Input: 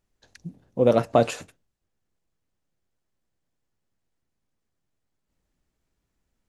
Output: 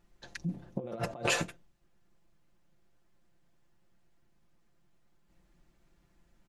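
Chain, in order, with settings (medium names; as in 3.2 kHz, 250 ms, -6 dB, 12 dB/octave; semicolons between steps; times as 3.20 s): treble shelf 4.2 kHz -8.5 dB; band-stop 490 Hz, Q 12; comb 5.8 ms, depth 65%; compressor with a negative ratio -34 dBFS, ratio -1; trim -1.5 dB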